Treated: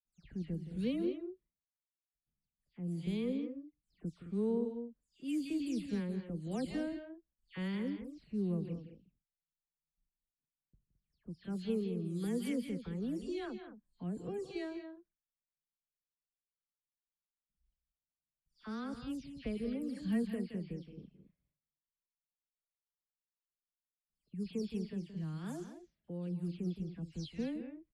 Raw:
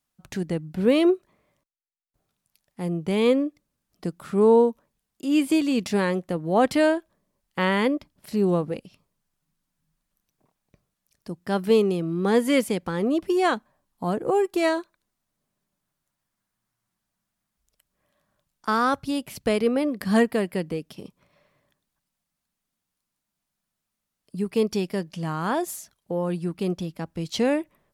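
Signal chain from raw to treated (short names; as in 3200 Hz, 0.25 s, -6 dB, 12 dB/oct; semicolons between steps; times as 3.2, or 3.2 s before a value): spectral delay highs early, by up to 0.197 s; gate with hold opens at -53 dBFS; passive tone stack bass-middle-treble 10-0-1; loudspeakers at several distances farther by 58 m -12 dB, 74 m -11 dB; low-pass opened by the level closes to 2000 Hz, open at -37 dBFS; gain +5 dB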